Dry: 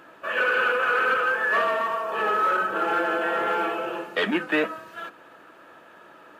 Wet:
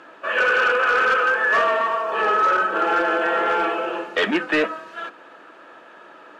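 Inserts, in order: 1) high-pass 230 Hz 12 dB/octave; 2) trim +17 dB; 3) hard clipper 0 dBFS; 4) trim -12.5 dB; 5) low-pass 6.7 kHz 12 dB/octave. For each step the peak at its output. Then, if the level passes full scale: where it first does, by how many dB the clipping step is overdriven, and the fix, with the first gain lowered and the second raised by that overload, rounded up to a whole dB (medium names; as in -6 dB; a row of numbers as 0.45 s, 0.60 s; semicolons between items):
-9.5 dBFS, +7.5 dBFS, 0.0 dBFS, -12.5 dBFS, -12.0 dBFS; step 2, 7.5 dB; step 2 +9 dB, step 4 -4.5 dB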